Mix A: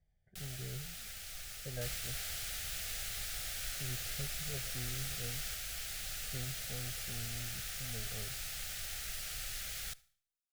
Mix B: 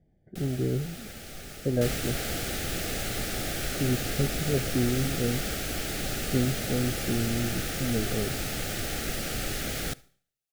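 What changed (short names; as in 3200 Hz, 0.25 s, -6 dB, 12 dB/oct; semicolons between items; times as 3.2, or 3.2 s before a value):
second sound +6.0 dB; master: remove passive tone stack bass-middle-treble 10-0-10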